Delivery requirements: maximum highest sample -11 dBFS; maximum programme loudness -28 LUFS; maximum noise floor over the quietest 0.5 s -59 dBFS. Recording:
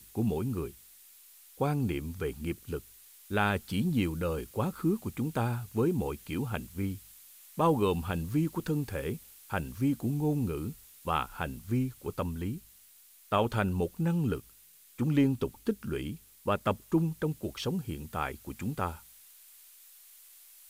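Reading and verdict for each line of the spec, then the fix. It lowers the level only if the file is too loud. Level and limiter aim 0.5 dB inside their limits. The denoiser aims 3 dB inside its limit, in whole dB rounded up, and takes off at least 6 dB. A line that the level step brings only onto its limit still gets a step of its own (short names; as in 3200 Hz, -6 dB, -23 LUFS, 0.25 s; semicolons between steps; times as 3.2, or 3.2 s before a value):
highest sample -13.5 dBFS: OK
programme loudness -32.5 LUFS: OK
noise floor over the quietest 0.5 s -58 dBFS: fail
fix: denoiser 6 dB, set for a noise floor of -58 dBFS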